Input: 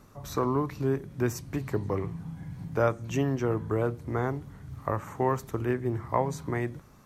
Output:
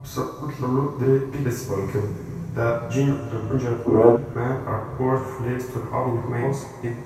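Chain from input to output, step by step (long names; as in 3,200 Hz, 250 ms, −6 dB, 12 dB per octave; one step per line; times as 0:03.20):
slices reordered back to front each 207 ms, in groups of 2
coupled-rooms reverb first 0.48 s, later 4.7 s, from −19 dB, DRR −9.5 dB
gain on a spectral selection 0:03.86–0:04.16, 210–1,200 Hz +12 dB
level −6 dB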